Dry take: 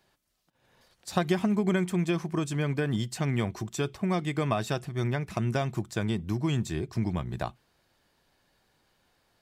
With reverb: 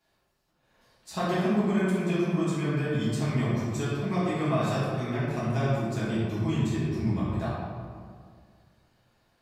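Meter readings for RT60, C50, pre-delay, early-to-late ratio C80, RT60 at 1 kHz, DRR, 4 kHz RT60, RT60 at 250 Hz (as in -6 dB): 2.0 s, -2.0 dB, 3 ms, 0.0 dB, 1.9 s, -10.5 dB, 1.1 s, 2.1 s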